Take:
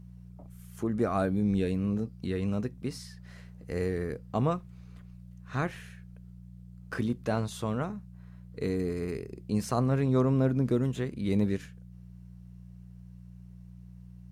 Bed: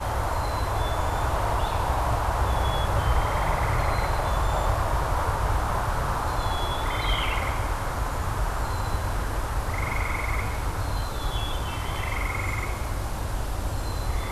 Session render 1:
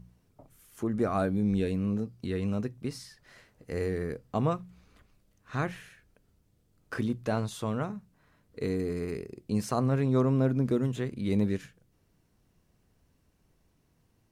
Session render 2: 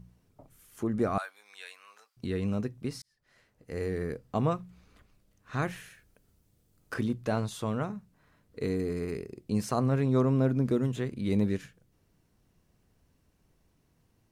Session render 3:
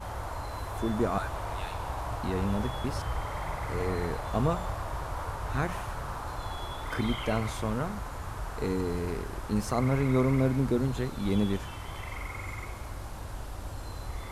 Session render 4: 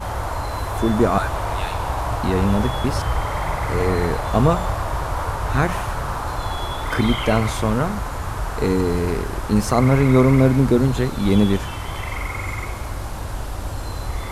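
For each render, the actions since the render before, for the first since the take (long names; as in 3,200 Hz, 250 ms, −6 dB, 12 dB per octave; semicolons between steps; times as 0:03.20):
hum removal 60 Hz, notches 3
0:01.18–0:02.17: high-pass filter 1,000 Hz 24 dB per octave; 0:03.02–0:04.04: fade in linear; 0:05.62–0:06.94: high-shelf EQ 6,500 Hz +8 dB
mix in bed −10 dB
level +11 dB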